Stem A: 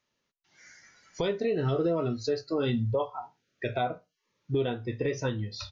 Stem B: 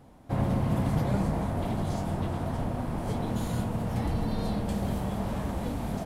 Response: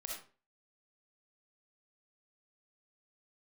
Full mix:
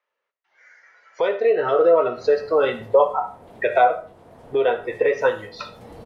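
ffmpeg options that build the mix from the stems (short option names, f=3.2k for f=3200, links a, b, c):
-filter_complex "[0:a]acrossover=split=590 2400:gain=0.0891 1 0.0794[a][b][c];[a][b][c]amix=inputs=3:normalize=0,volume=2.5dB,asplit=3[d][e][f];[e]volume=-6.5dB[g];[1:a]adelay=1850,volume=-14dB,asplit=2[h][i];[i]volume=-23dB[j];[f]apad=whole_len=348524[k];[h][k]sidechaincompress=threshold=-53dB:ratio=3:attack=20:release=718[l];[2:a]atrim=start_sample=2205[m];[g][j]amix=inputs=2:normalize=0[n];[n][m]afir=irnorm=-1:irlink=0[o];[d][l][o]amix=inputs=3:normalize=0,lowshelf=f=250:g=-9.5,dynaudnorm=f=270:g=9:m=11dB,equalizer=f=470:t=o:w=0.68:g=10"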